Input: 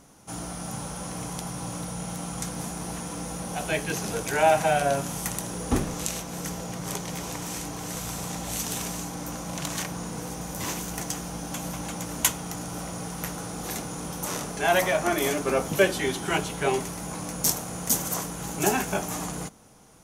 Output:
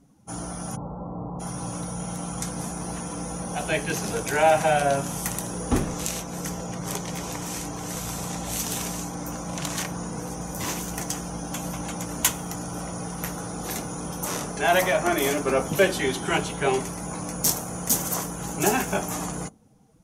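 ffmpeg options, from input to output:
-filter_complex "[0:a]asplit=3[a][b][c];[a]afade=t=out:st=0.75:d=0.02[d];[b]lowpass=f=1.1k:w=0.5412,lowpass=f=1.1k:w=1.3066,afade=t=in:st=0.75:d=0.02,afade=t=out:st=1.39:d=0.02[e];[c]afade=t=in:st=1.39:d=0.02[f];[d][e][f]amix=inputs=3:normalize=0,afftdn=nr=16:nf=-47,acontrast=84,volume=-5dB"

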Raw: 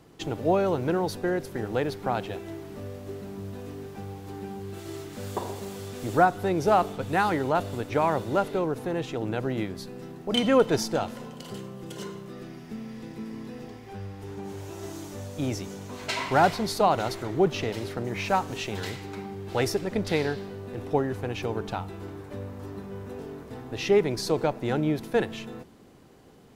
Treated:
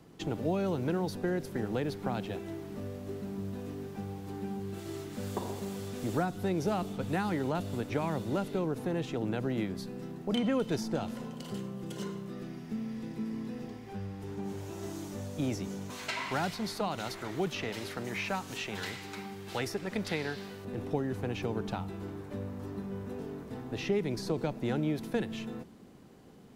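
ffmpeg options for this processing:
-filter_complex "[0:a]asettb=1/sr,asplit=3[a][b][c];[a]atrim=end=15.904[d];[b]atrim=start=15.9:end=20.65,asetpts=PTS-STARTPTS,afade=t=in:d=0.004:c=qsin,afade=t=out:st=4.746:d=0.004:c=qsin,tiltshelf=f=860:g=-7.5[e];[c]atrim=start=20.646[f];[d][e]acrossfade=d=0.004:c1=hsin:c2=qsin[g];[g][f]acrossfade=d=0.004:c1=qsin:c2=hsin,equalizer=f=200:t=o:w=0.88:g=6,acrossover=split=350|2300[h][i][j];[h]acompressor=threshold=-27dB:ratio=4[k];[i]acompressor=threshold=-31dB:ratio=4[l];[j]acompressor=threshold=-40dB:ratio=4[m];[k][l][m]amix=inputs=3:normalize=0,volume=-3.5dB"

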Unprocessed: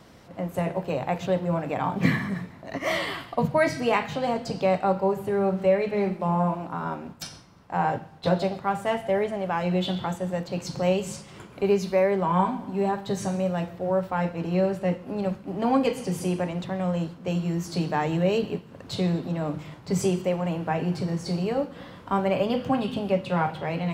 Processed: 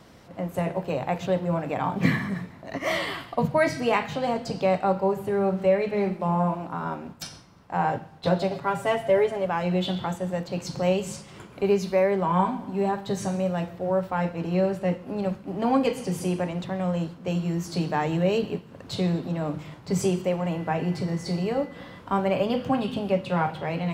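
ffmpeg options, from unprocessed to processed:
-filter_complex "[0:a]asettb=1/sr,asplit=3[a][b][c];[a]atrim=end=8.504[d];[b]atrim=start=8.5:end=9.46,asetpts=PTS-STARTPTS,afade=t=in:d=0.004:c=qsin,afade=t=out:st=0.956:d=0.004:c=qsin,aecho=1:1:7.1:0.81,atrim=end_sample=42336[e];[c]atrim=start=9.456[f];[d][e]acrossfade=d=0.004:c1=hsin:c2=qsin[g];[g][f]acrossfade=d=0.004:c1=qsin:c2=hsin,asettb=1/sr,asplit=3[h][i][j];[h]atrim=end=20.404[k];[i]atrim=start=20.4:end=21.99,asetpts=PTS-STARTPTS,afade=t=in:d=0.004:c=qsin,afade=t=out:st=1.586:d=0.004:c=qsin,aeval=exprs='val(0)+0.00316*sin(2*PI*2000*n/s)':c=same[l];[j]atrim=start=21.986[m];[k][l]acrossfade=d=0.004:c1=hsin:c2=qsin[n];[n][m]acrossfade=d=0.004:c1=qsin:c2=hsin"

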